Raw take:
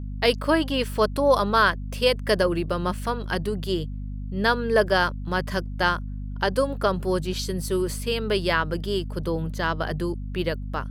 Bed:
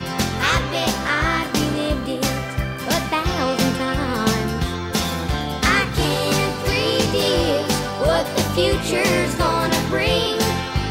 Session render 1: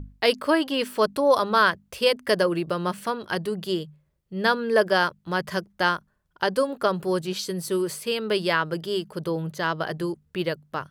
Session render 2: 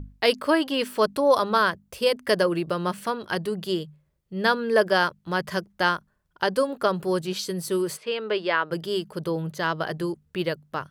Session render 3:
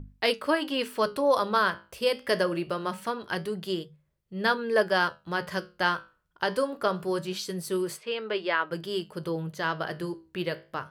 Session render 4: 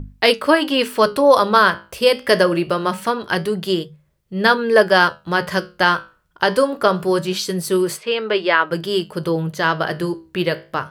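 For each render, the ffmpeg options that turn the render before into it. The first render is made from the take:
ffmpeg -i in.wav -af "bandreject=frequency=50:width_type=h:width=6,bandreject=frequency=100:width_type=h:width=6,bandreject=frequency=150:width_type=h:width=6,bandreject=frequency=200:width_type=h:width=6,bandreject=frequency=250:width_type=h:width=6" out.wav
ffmpeg -i in.wav -filter_complex "[0:a]asettb=1/sr,asplit=3[link_01][link_02][link_03];[link_01]atrim=end=1.574[link_04];[link_02]atrim=start=1.57:end=2.12,asetpts=PTS-STARTPTS,afade=type=in:duration=0.004:curve=qsin,afade=type=out:start_time=0.546:duration=0.004:curve=qsin,equalizer=frequency=2400:width_type=o:width=2.6:gain=-4[link_05];[link_03]atrim=start=2.116[link_06];[link_04][link_05]acrossfade=duration=0.004:curve1=hsin:curve2=qsin[link_07];[link_07][link_06]acrossfade=duration=0.004:curve1=qsin:curve2=hsin,asplit=3[link_08][link_09][link_10];[link_08]afade=type=out:start_time=7.96:duration=0.02[link_11];[link_09]highpass=320,lowpass=3100,afade=type=in:start_time=7.96:duration=0.02,afade=type=out:start_time=8.7:duration=0.02[link_12];[link_10]afade=type=in:start_time=8.7:duration=0.02[link_13];[link_11][link_12][link_13]amix=inputs=3:normalize=0" out.wav
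ffmpeg -i in.wav -filter_complex "[0:a]flanger=delay=8.2:depth=9.4:regen=-72:speed=0.24:shape=triangular,acrossover=split=2600[link_01][link_02];[link_01]crystalizer=i=3:c=0[link_03];[link_03][link_02]amix=inputs=2:normalize=0" out.wav
ffmpeg -i in.wav -af "volume=11dB,alimiter=limit=-1dB:level=0:latency=1" out.wav

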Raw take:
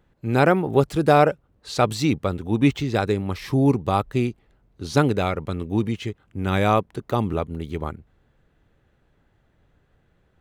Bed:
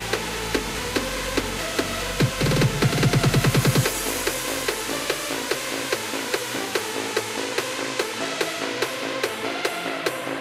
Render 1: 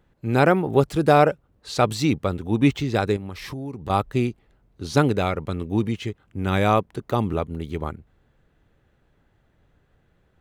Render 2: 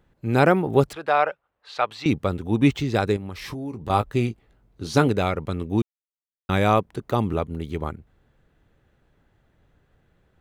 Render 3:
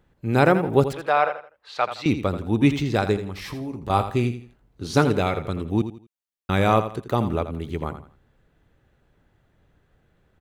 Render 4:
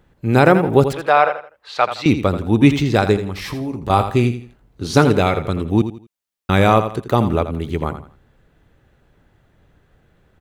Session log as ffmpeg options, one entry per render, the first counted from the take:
ffmpeg -i in.wav -filter_complex "[0:a]asettb=1/sr,asplit=3[link_01][link_02][link_03];[link_01]atrim=end=3.164[link_04];[link_02]atrim=start=3.16:end=3.9,asetpts=PTS-STARTPTS,afade=type=in:duration=0.004:curve=qsin,afade=type=out:start_time=0.736:duration=0.004:curve=qsin,acompressor=threshold=-29dB:ratio=12:attack=3.2:release=140:knee=1:detection=peak[link_05];[link_03]atrim=start=3.896[link_06];[link_04][link_05]acrossfade=duration=0.004:curve1=hsin:curve2=qsin[link_07];[link_07][link_06]acrossfade=duration=0.004:curve1=qsin:curve2=hsin" out.wav
ffmpeg -i in.wav -filter_complex "[0:a]asettb=1/sr,asplit=3[link_01][link_02][link_03];[link_01]atrim=end=0.934[link_04];[link_02]atrim=start=0.93:end=2.06,asetpts=PTS-STARTPTS,afade=type=in:duration=0.004:curve=qsin,afade=type=out:start_time=1.126:duration=0.004:curve=qsin,acrossover=split=600 3700:gain=0.0708 1 0.0891[link_05][link_06][link_07];[link_05][link_06][link_07]amix=inputs=3:normalize=0[link_08];[link_03]atrim=start=2.056[link_09];[link_04][link_08]acrossfade=duration=0.004:curve1=hsin:curve2=qsin[link_10];[link_10][link_09]acrossfade=duration=0.004:curve1=qsin:curve2=hsin,asettb=1/sr,asplit=3[link_11][link_12][link_13];[link_11]atrim=end=3.374[link_14];[link_12]atrim=start=3.37:end=5.08,asetpts=PTS-STARTPTS,afade=type=in:duration=0.004:curve=qsin,afade=type=out:start_time=1.706:duration=0.004:curve=qsin,asplit=2[link_15][link_16];[link_16]adelay=18,volume=-10dB[link_17];[link_15][link_17]amix=inputs=2:normalize=0,atrim=end_sample=75411[link_18];[link_13]atrim=start=5.076[link_19];[link_14][link_18]acrossfade=duration=0.004:curve1=hsin:curve2=qsin[link_20];[link_20][link_19]acrossfade=duration=0.004:curve1=qsin:curve2=hsin,asplit=3[link_21][link_22][link_23];[link_21]atrim=end=5.82,asetpts=PTS-STARTPTS,afade=type=out:start_time=5.816:duration=0.004:curve=hsin[link_24];[link_22]atrim=start=5.82:end=6.49,asetpts=PTS-STARTPTS,volume=0[link_25];[link_23]atrim=start=6.49,asetpts=PTS-STARTPTS,afade=type=in:duration=0.004:curve=hsin[link_26];[link_24][link_25][link_26]concat=n=3:v=0:a=1" out.wav
ffmpeg -i in.wav -af "aecho=1:1:83|166|249:0.282|0.0817|0.0237" out.wav
ffmpeg -i in.wav -af "volume=6.5dB,alimiter=limit=-1dB:level=0:latency=1" out.wav

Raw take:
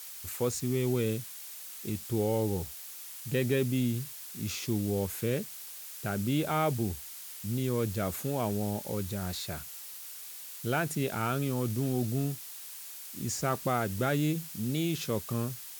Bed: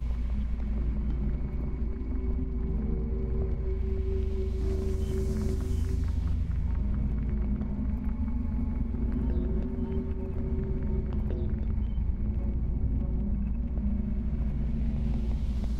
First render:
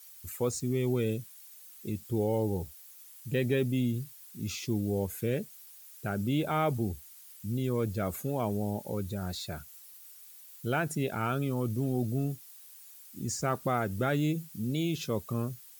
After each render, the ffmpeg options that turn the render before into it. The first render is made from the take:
ffmpeg -i in.wav -af "afftdn=noise_reduction=12:noise_floor=-45" out.wav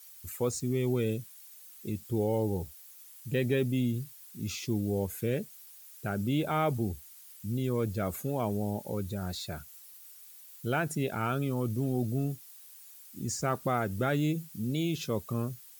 ffmpeg -i in.wav -af anull out.wav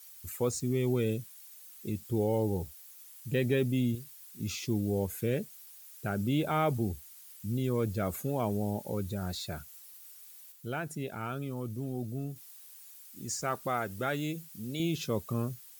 ffmpeg -i in.wav -filter_complex "[0:a]asettb=1/sr,asplit=3[link_01][link_02][link_03];[link_01]atrim=end=3.954[link_04];[link_02]atrim=start=3.95:end=4.4,asetpts=PTS-STARTPTS,afade=type=in:duration=0.004:curve=qsin,afade=type=out:start_time=0.446:duration=0.004:curve=qsin,equalizer=frequency=120:width=0.48:gain=-10[link_05];[link_03]atrim=start=4.396[link_06];[link_04][link_05]acrossfade=duration=0.004:curve1=hsin:curve2=qsin[link_07];[link_07][link_06]acrossfade=duration=0.004:curve1=qsin:curve2=hsin,asettb=1/sr,asplit=3[link_08][link_09][link_10];[link_08]atrim=end=12.904[link_11];[link_09]atrim=start=12.9:end=14.8,asetpts=PTS-STARTPTS,afade=type=in:duration=0.004:curve=qsin,afade=type=out:start_time=1.896:duration=0.004:curve=qsin,lowshelf=frequency=400:gain=-8.5[link_12];[link_10]atrim=start=14.796[link_13];[link_11][link_12]acrossfade=duration=0.004:curve1=hsin:curve2=qsin[link_14];[link_14][link_13]acrossfade=duration=0.004:curve1=qsin:curve2=hsin,asplit=3[link_15][link_16][link_17];[link_15]atrim=end=10.522[link_18];[link_16]atrim=start=10.518:end=12.362,asetpts=PTS-STARTPTS,volume=-6dB[link_19];[link_17]atrim=start=12.358[link_20];[link_18][link_19]acrossfade=duration=0.004:curve1=hsin:curve2=hsin[link_21];[link_21][link_20]acrossfade=duration=0.004:curve1=hsin:curve2=hsin" out.wav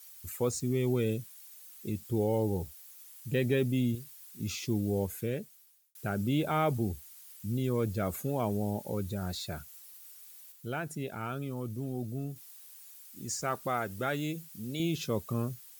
ffmpeg -i in.wav -filter_complex "[0:a]asplit=2[link_01][link_02];[link_01]atrim=end=5.95,asetpts=PTS-STARTPTS,afade=type=out:start_time=5.02:duration=0.93[link_03];[link_02]atrim=start=5.95,asetpts=PTS-STARTPTS,afade=type=in:duration=0.004:curve=hsin[link_04];[link_03][link_04]concat=n=2:v=0:a=1" out.wav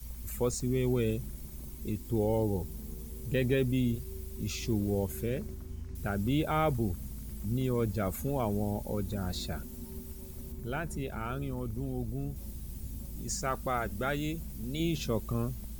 ffmpeg -i in.wav -i bed.wav -filter_complex "[1:a]volume=-12.5dB[link_01];[0:a][link_01]amix=inputs=2:normalize=0" out.wav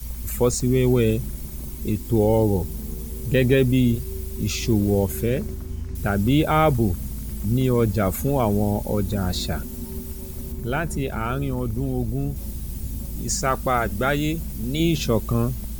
ffmpeg -i in.wav -af "volume=10.5dB" out.wav

